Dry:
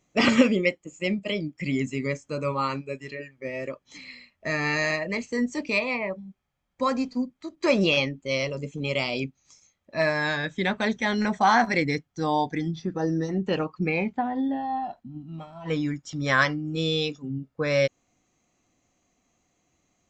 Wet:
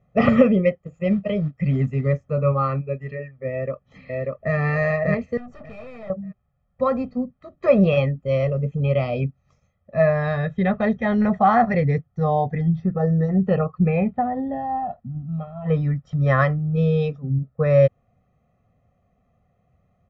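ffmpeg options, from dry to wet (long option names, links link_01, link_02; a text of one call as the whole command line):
ffmpeg -i in.wav -filter_complex "[0:a]asettb=1/sr,asplit=3[link_01][link_02][link_03];[link_01]atrim=end=0.844[link_04];[link_02]atrim=start=0.84:end=2.22,asetpts=PTS-STARTPTS,afade=type=in:duration=0.004:curve=qsin,afade=type=out:start_time=1.376:duration=0.004:curve=qsin,acrusher=bits=5:mode=log:mix=0:aa=0.000001[link_05];[link_03]atrim=start=2.216[link_06];[link_04][link_05]acrossfade=duration=0.004:curve1=hsin:curve2=qsin[link_07];[link_07][link_06]acrossfade=duration=0.004:curve1=qsin:curve2=hsin,asplit=2[link_08][link_09];[link_09]afade=type=in:start_time=3.5:duration=0.01,afade=type=out:start_time=4.55:duration=0.01,aecho=0:1:590|1180|1770:1|0.15|0.0225[link_10];[link_08][link_10]amix=inputs=2:normalize=0,asettb=1/sr,asplit=3[link_11][link_12][link_13];[link_11]atrim=end=5.374[link_14];[link_12]atrim=start=5.37:end=6.1,asetpts=PTS-STARTPTS,afade=type=in:duration=0.004:curve=qsin,afade=type=out:start_time=0.726:duration=0.004:curve=qsin,aeval=exprs='(tanh(112*val(0)+0.45)-tanh(0.45))/112':channel_layout=same[link_15];[link_13]atrim=start=6.096[link_16];[link_14][link_15]acrossfade=duration=0.004:curve1=hsin:curve2=qsin[link_17];[link_17][link_16]acrossfade=duration=0.004:curve1=qsin:curve2=hsin,lowpass=1500,equalizer=frequency=110:width_type=o:width=3:gain=9.5,aecho=1:1:1.6:1" out.wav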